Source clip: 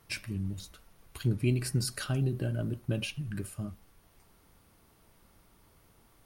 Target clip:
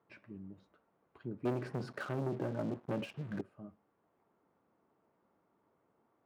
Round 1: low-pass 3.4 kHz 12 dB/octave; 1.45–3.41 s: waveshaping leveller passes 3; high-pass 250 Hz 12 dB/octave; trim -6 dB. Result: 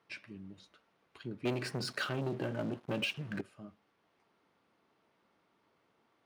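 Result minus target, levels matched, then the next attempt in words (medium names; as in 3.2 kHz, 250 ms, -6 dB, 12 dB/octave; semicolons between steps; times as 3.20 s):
4 kHz band +12.5 dB
low-pass 1.1 kHz 12 dB/octave; 1.45–3.41 s: waveshaping leveller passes 3; high-pass 250 Hz 12 dB/octave; trim -6 dB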